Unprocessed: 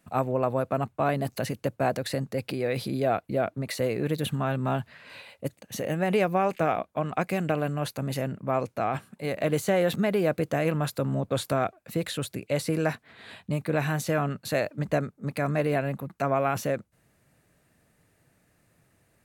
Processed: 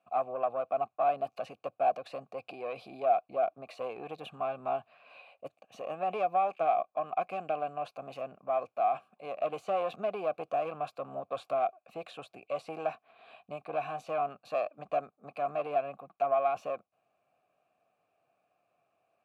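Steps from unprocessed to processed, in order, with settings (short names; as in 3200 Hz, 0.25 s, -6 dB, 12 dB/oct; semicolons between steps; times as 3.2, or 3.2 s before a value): tube stage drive 16 dB, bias 0.6; vowel filter a; gain +7.5 dB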